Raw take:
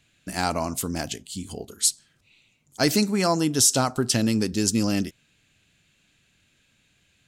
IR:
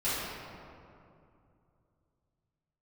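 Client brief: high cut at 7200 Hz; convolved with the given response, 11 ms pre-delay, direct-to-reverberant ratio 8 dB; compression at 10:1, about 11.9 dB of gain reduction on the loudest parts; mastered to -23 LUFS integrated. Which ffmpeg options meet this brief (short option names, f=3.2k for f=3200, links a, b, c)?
-filter_complex "[0:a]lowpass=7.2k,acompressor=threshold=-29dB:ratio=10,asplit=2[a][b];[1:a]atrim=start_sample=2205,adelay=11[c];[b][c]afir=irnorm=-1:irlink=0,volume=-18dB[d];[a][d]amix=inputs=2:normalize=0,volume=10.5dB"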